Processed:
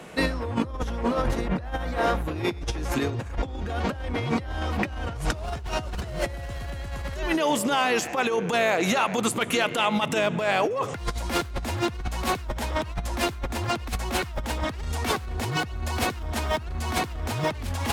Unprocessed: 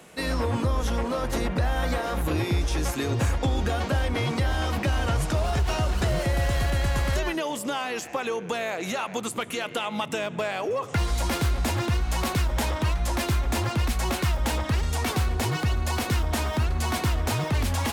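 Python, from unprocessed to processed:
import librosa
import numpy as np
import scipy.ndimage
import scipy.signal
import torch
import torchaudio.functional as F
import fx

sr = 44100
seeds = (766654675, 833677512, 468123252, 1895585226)

y = fx.high_shelf(x, sr, hz=5000.0, db=fx.steps((0.0, -10.0), (5.14, -3.5)))
y = fx.over_compress(y, sr, threshold_db=-29.0, ratio=-0.5)
y = F.gain(torch.from_numpy(y), 3.0).numpy()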